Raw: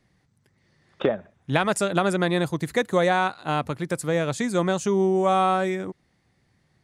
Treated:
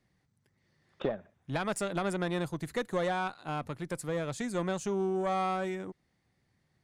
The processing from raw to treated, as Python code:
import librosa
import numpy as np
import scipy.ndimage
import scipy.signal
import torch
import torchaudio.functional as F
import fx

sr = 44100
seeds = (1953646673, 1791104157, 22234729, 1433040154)

y = fx.diode_clip(x, sr, knee_db=-16.5)
y = y * librosa.db_to_amplitude(-8.0)